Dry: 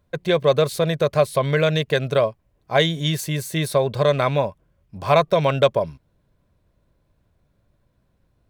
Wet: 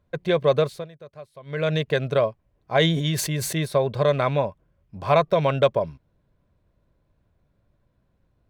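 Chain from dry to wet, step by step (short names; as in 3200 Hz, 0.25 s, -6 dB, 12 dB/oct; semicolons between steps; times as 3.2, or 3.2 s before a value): high shelf 5300 Hz -10 dB; 0.6–1.73 dip -21.5 dB, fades 0.28 s; 2.77–3.53 sustainer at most 41 dB/s; gain -2 dB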